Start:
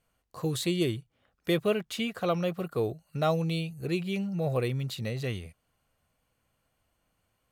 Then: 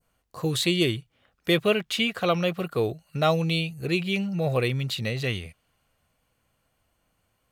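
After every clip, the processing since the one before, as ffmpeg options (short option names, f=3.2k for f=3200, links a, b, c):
-af "adynamicequalizer=threshold=0.00398:dfrequency=2800:dqfactor=0.76:tfrequency=2800:tqfactor=0.76:attack=5:release=100:ratio=0.375:range=3.5:mode=boostabove:tftype=bell,volume=3.5dB"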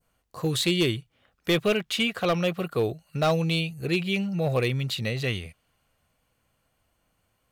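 -af "asoftclip=type=hard:threshold=-17dB"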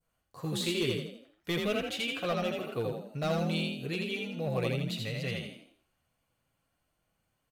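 -filter_complex "[0:a]flanger=delay=6.1:depth=2.4:regen=-39:speed=0.56:shape=triangular,asplit=2[a][b];[b]asplit=5[c][d][e][f][g];[c]adelay=82,afreqshift=41,volume=-3dB[h];[d]adelay=164,afreqshift=82,volume=-11dB[i];[e]adelay=246,afreqshift=123,volume=-18.9dB[j];[f]adelay=328,afreqshift=164,volume=-26.9dB[k];[g]adelay=410,afreqshift=205,volume=-34.8dB[l];[h][i][j][k][l]amix=inputs=5:normalize=0[m];[a][m]amix=inputs=2:normalize=0,volume=-5dB"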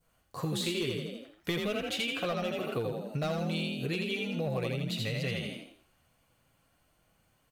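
-af "acompressor=threshold=-39dB:ratio=5,volume=8.5dB"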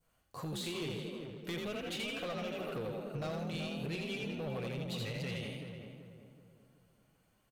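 -filter_complex "[0:a]asoftclip=type=tanh:threshold=-30.5dB,asplit=2[a][b];[b]adelay=381,lowpass=f=1.4k:p=1,volume=-6dB,asplit=2[c][d];[d]adelay=381,lowpass=f=1.4k:p=1,volume=0.44,asplit=2[e][f];[f]adelay=381,lowpass=f=1.4k:p=1,volume=0.44,asplit=2[g][h];[h]adelay=381,lowpass=f=1.4k:p=1,volume=0.44,asplit=2[i][j];[j]adelay=381,lowpass=f=1.4k:p=1,volume=0.44[k];[a][c][e][g][i][k]amix=inputs=6:normalize=0,volume=-4dB"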